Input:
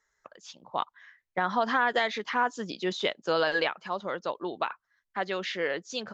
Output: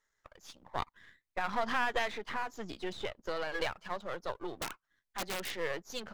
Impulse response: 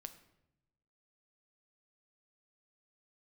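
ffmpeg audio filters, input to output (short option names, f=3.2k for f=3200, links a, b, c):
-filter_complex "[0:a]aeval=exprs='if(lt(val(0),0),0.251*val(0),val(0))':c=same,asettb=1/sr,asplit=3[a][b][c];[a]atrim=end=2.094[d];[b]atrim=start=2.09:end=3.6,asetpts=PTS-STARTPTS,afade=t=in:d=0.004:c=qsin,afade=t=out:st=1.506:d=0.004:c=qsin,acrossover=split=1600|3400[e][f][g];[e]acompressor=threshold=-31dB:ratio=4[h];[f]acompressor=threshold=-43dB:ratio=4[i];[g]acompressor=threshold=-53dB:ratio=4[j];[h][i][j]amix=inputs=3:normalize=0[k];[c]atrim=start=3.596[l];[d][k]acrossfade=d=0.004:c1=hsin:c2=qsin[m];[m][l]acrossfade=d=0.004:c1=qsin:c2=hsin,asettb=1/sr,asplit=3[n][o][p];[n]atrim=end=4.574[q];[o]atrim=start=4.57:end=5.52,asetpts=PTS-STARTPTS,afade=t=in:d=0.004:c=qsin,afade=t=out:st=0.946:d=0.004:c=qsin,aeval=exprs='(mod(20*val(0)+1,2)-1)/20':c=same[r];[p]atrim=start=5.516[s];[q][r]acrossfade=d=0.004:c1=hsin:c2=qsin[t];[t][s]acrossfade=d=0.004:c1=qsin:c2=hsin,volume=-2dB"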